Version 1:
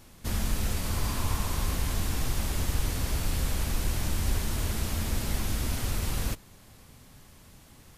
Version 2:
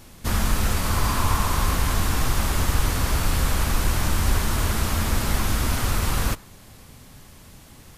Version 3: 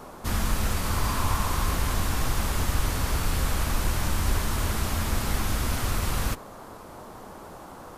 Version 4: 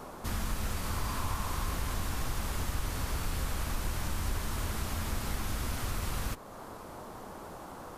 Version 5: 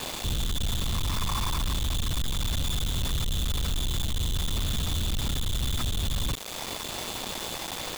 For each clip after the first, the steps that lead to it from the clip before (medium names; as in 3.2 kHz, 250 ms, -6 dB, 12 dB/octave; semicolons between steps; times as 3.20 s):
dynamic bell 1.2 kHz, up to +7 dB, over -53 dBFS, Q 1.2; trim +6.5 dB
band noise 160–1200 Hz -40 dBFS; trim -4 dB
compression 1.5:1, threshold -39 dBFS, peak gain reduction 8 dB; trim -1.5 dB
resonances exaggerated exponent 2; whistle 3.5 kHz -44 dBFS; companded quantiser 2-bit